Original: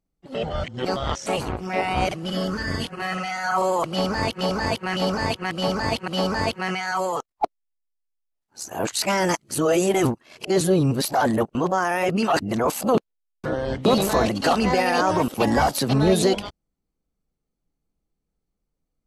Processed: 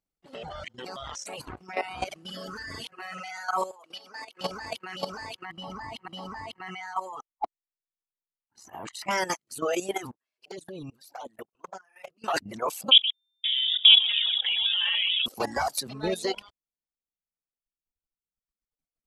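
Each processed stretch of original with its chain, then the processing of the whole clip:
0:03.71–0:04.41: high-pass filter 330 Hz + downward compressor 10 to 1, threshold −30 dBFS
0:05.45–0:09.11: high-shelf EQ 2,700 Hz −11.5 dB + comb filter 1 ms, depth 55%
0:10.11–0:12.24: low-shelf EQ 130 Hz −5.5 dB + output level in coarse steps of 21 dB + flanger swept by the level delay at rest 8.6 ms, full sweep at −19 dBFS
0:12.91–0:15.26: tilt shelving filter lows +8.5 dB, about 1,200 Hz + multi-tap delay 42/125/530 ms −12.5/−6.5/−19.5 dB + voice inversion scrambler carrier 3,600 Hz
whole clip: reverb reduction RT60 1.9 s; low-shelf EQ 420 Hz −11 dB; output level in coarse steps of 13 dB

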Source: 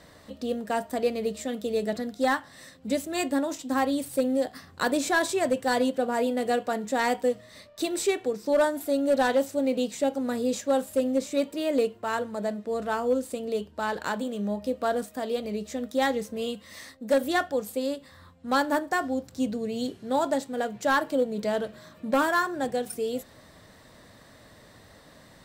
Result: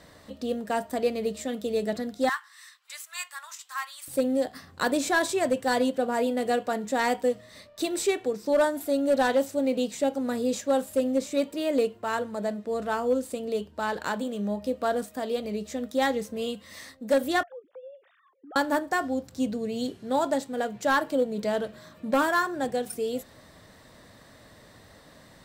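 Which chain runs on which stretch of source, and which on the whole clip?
0:02.29–0:04.08: elliptic high-pass filter 1,100 Hz, stop band 80 dB + dynamic equaliser 3,400 Hz, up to −4 dB, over −50 dBFS, Q 1.4
0:17.43–0:18.56: three sine waves on the formant tracks + low-pass filter 1,600 Hz 6 dB per octave + downward compressor 2.5 to 1, threshold −49 dBFS
whole clip: no processing

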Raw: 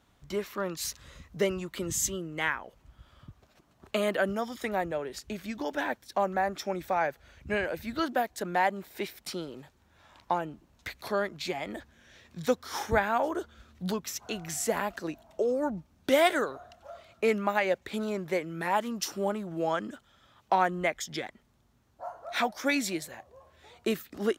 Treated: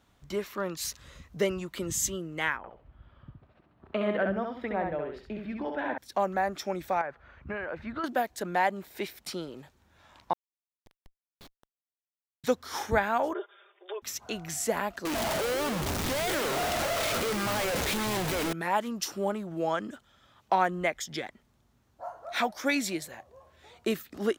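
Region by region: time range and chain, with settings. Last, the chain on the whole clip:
0:02.57–0:05.98: high-frequency loss of the air 420 metres + repeating echo 67 ms, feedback 23%, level −4 dB
0:07.01–0:08.04: parametric band 1,200 Hz +8.5 dB 0.92 octaves + downward compressor 4 to 1, threshold −31 dBFS + low-pass filter 2,300 Hz
0:10.33–0:12.44: linear-phase brick-wall band-pass 2,900–8,000 Hz + comparator with hysteresis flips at −35.5 dBFS
0:13.33–0:14.02: comb filter 5 ms, depth 85% + downward compressor 4 to 1, threshold −29 dBFS + linear-phase brick-wall band-pass 340–3,700 Hz
0:15.05–0:18.53: sign of each sample alone + low-shelf EQ 150 Hz −6 dB + echo with shifted repeats 128 ms, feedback 59%, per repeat −92 Hz, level −8.5 dB
whole clip: no processing

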